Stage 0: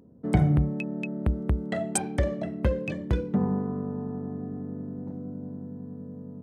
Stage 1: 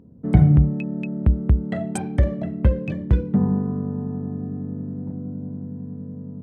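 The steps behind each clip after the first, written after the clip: tone controls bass +9 dB, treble -8 dB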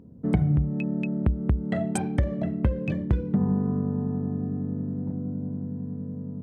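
compression 6:1, threshold -19 dBFS, peak gain reduction 11 dB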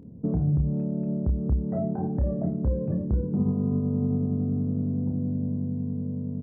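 peak limiter -20.5 dBFS, peak gain reduction 9.5 dB; Gaussian low-pass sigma 8.9 samples; doubling 29 ms -7 dB; trim +3 dB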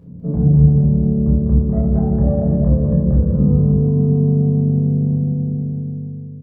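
fade out at the end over 1.61 s; bouncing-ball echo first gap 200 ms, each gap 0.75×, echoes 5; simulated room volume 960 m³, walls furnished, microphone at 5.6 m; trim -2 dB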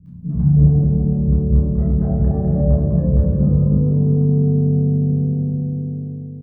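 three bands offset in time lows, highs, mids 60/320 ms, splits 240/820 Hz

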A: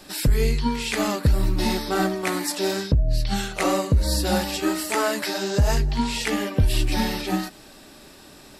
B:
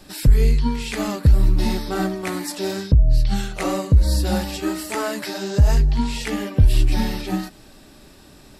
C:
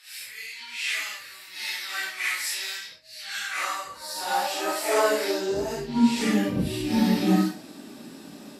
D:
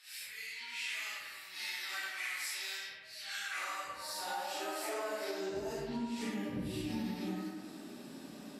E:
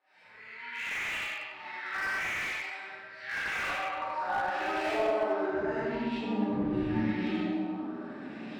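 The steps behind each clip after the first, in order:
bass shelf 190 Hz +10 dB; trim -3 dB
phase randomisation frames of 200 ms; gain riding within 4 dB 0.5 s; high-pass sweep 2.1 kHz -> 220 Hz, 3.07–6.26 s; trim -2.5 dB
compression 6:1, threshold -30 dBFS, peak gain reduction 15 dB; bucket-brigade echo 98 ms, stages 2048, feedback 61%, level -5.5 dB; trim -7 dB
LFO low-pass saw up 0.81 Hz 680–3100 Hz; reverberation RT60 1.3 s, pre-delay 14 ms, DRR -5.5 dB; slew-rate limiter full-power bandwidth 52 Hz

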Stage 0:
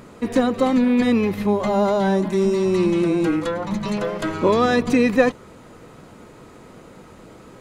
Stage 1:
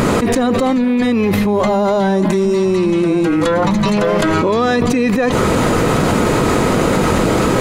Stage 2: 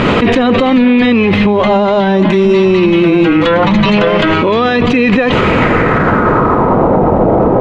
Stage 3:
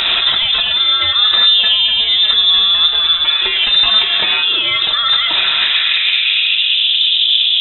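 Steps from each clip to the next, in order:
level flattener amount 100%; trim -3 dB
low-pass sweep 3 kHz -> 760 Hz, 5.32–7.01 s; loudness maximiser +9.5 dB; trim -1 dB
on a send at -4 dB: reverberation RT60 0.70 s, pre-delay 3 ms; on the sum: frequency inversion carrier 3.8 kHz; trim -5.5 dB

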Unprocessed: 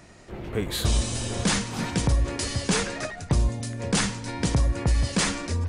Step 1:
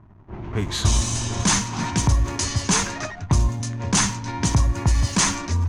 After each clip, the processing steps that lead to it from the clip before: hysteresis with a dead band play -41 dBFS; level-controlled noise filter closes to 1.5 kHz, open at -22 dBFS; graphic EQ with 31 bands 100 Hz +7 dB, 500 Hz -12 dB, 1 kHz +8 dB, 6.3 kHz +10 dB; trim +2.5 dB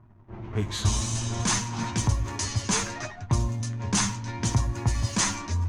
flange 0.63 Hz, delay 8.2 ms, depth 1.5 ms, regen +42%; trim -1.5 dB

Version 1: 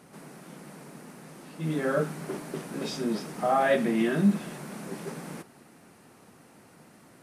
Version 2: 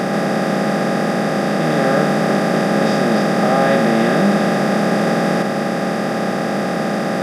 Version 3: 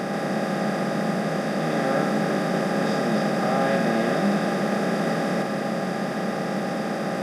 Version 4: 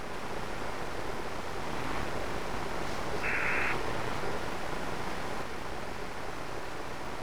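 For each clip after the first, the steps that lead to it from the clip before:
spectral levelling over time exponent 0.2; trim +3 dB
Schroeder reverb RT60 3.4 s, combs from 33 ms, DRR 6.5 dB; trim -8.5 dB
full-wave rectifier; painted sound noise, 3.23–3.73 s, 1.3–2.7 kHz -24 dBFS; trim -8.5 dB

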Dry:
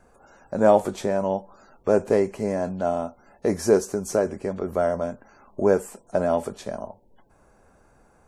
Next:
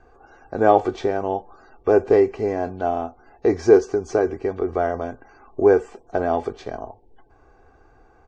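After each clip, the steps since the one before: Bessel low-pass 3.7 kHz, order 6; comb 2.6 ms, depth 70%; trim +2 dB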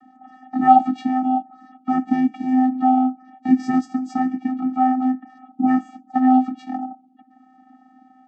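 vocoder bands 16, square 257 Hz; trim +2 dB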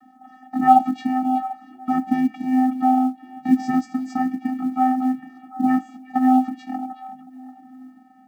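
peaking EQ 440 Hz -6.5 dB 0.73 oct; repeats whose band climbs or falls 371 ms, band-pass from 2.9 kHz, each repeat -1.4 oct, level -10.5 dB; companded quantiser 8-bit

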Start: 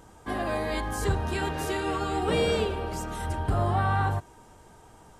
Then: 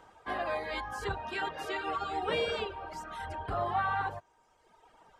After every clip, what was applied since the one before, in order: reverb removal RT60 1.4 s; three-band isolator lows -13 dB, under 480 Hz, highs -16 dB, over 4.4 kHz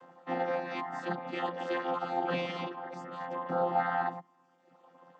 vocoder on a held chord bare fifth, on F3; trim +2 dB

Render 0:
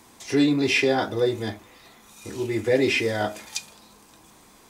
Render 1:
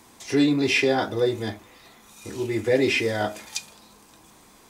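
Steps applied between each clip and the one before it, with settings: no audible change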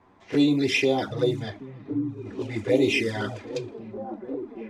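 level-controlled noise filter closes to 1.5 kHz, open at -18 dBFS; repeats whose band climbs or falls 775 ms, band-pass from 150 Hz, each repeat 0.7 oct, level -1 dB; touch-sensitive flanger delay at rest 11.4 ms, full sweep at -17 dBFS

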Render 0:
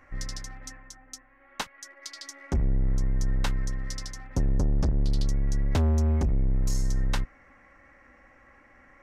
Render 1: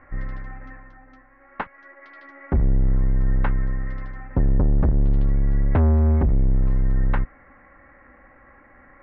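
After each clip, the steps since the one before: inverse Chebyshev low-pass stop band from 8 kHz, stop band 70 dB; trim +6 dB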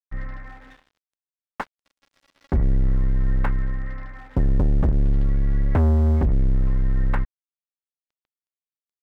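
crossover distortion -39.5 dBFS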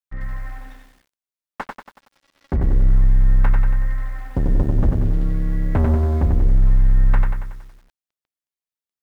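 bit-crushed delay 93 ms, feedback 55%, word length 9-bit, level -4 dB

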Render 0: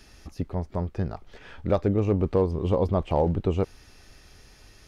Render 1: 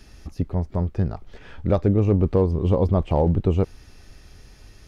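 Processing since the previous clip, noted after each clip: bass shelf 310 Hz +7 dB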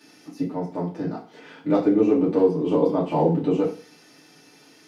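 steep high-pass 170 Hz 36 dB/octave; FDN reverb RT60 0.39 s, low-frequency decay 1×, high-frequency decay 1×, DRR -6.5 dB; trim -5.5 dB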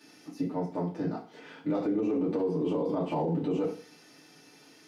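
peak limiter -18 dBFS, peak gain reduction 11 dB; trim -3.5 dB

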